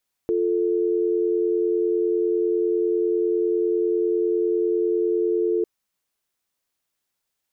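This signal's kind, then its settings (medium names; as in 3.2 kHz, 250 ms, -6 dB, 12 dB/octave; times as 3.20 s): call progress tone dial tone, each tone -21.5 dBFS 5.35 s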